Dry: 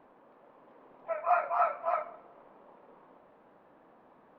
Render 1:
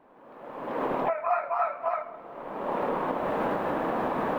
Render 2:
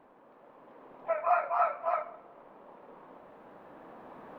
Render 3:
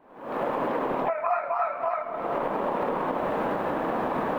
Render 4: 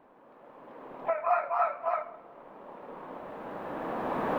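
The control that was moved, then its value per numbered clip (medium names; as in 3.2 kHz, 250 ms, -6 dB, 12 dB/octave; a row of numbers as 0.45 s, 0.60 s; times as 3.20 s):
recorder AGC, rising by: 35 dB/s, 5 dB/s, 87 dB/s, 13 dB/s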